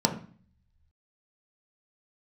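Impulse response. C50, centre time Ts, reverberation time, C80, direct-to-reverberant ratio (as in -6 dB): 10.5 dB, 13 ms, 0.45 s, 15.0 dB, 2.0 dB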